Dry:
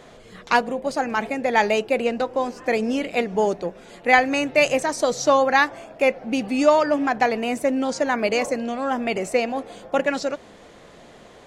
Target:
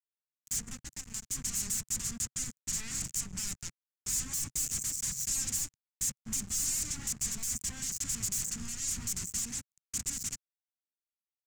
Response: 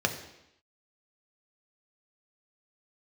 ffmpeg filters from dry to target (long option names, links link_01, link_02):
-filter_complex "[0:a]asuperstop=centerf=1800:order=20:qfactor=3.4,asplit=3[link_01][link_02][link_03];[link_01]afade=type=out:start_time=0.74:duration=0.02[link_04];[link_02]acompressor=threshold=-26dB:ratio=16,afade=type=in:start_time=0.74:duration=0.02,afade=type=out:start_time=1.27:duration=0.02[link_05];[link_03]afade=type=in:start_time=1.27:duration=0.02[link_06];[link_04][link_05][link_06]amix=inputs=3:normalize=0,asettb=1/sr,asplit=3[link_07][link_08][link_09];[link_07]atrim=end=2.644[link_10];[link_08]atrim=start=2.64:end=3.07,asetpts=PTS-STARTPTS,afade=type=in:duration=0.004:curve=qsin,afade=type=out:start_time=0.426:duration=0.004:curve=qsin,lowshelf=frequency=280:width_type=q:width=3:gain=7.5[link_11];[link_09]atrim=start=3.066[link_12];[link_10][link_11]acrossfade=duration=0.004:curve1=hsin:curve2=qsin[link_13];[link_13][link_12]acrossfade=duration=0.004:curve1=qsin:curve2=hsin,asettb=1/sr,asplit=3[link_14][link_15][link_16];[link_14]atrim=end=6.904[link_17];[link_15]atrim=start=6.9:end=7.53,asetpts=PTS-STARTPTS,afade=type=in:duration=0.004:curve=qsin,afade=type=out:start_time=0.626:duration=0.004:curve=qsin,highpass=frequency=87:width=0.5412,highpass=frequency=87:width=1.3066[link_18];[link_16]atrim=start=7.526[link_19];[link_17][link_18]acrossfade=duration=0.004:curve1=hsin:curve2=qsin[link_20];[link_20][link_19]acrossfade=duration=0.004:curve1=qsin:curve2=hsin,aeval=exprs='sgn(val(0))*max(abs(val(0))-0.0335,0)':channel_layout=same,alimiter=limit=-16.5dB:level=0:latency=1:release=198,aeval=exprs='0.15*sin(PI/2*8.91*val(0)/0.15)':channel_layout=same,firequalizer=gain_entry='entry(130,0);entry(320,-18);entry(540,-29);entry(1200,-22);entry(2000,-17);entry(3600,-18);entry(7100,7);entry(10000,-5)':delay=0.05:min_phase=1,acompressor=mode=upward:threshold=-44dB:ratio=2.5,volume=-8.5dB"